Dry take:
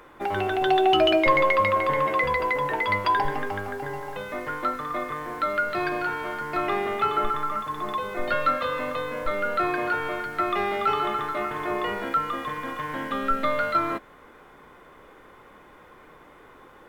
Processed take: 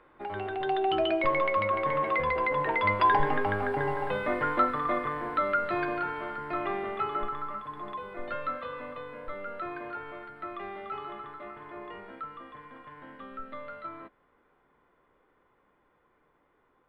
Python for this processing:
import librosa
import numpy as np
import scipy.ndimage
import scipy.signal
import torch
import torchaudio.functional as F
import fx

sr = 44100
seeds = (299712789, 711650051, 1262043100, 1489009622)

y = fx.doppler_pass(x, sr, speed_mps=6, closest_m=5.4, pass_at_s=4.07)
y = scipy.signal.lfilter(np.full(7, 1.0 / 7), 1.0, y)
y = y * 10.0 ** (4.0 / 20.0)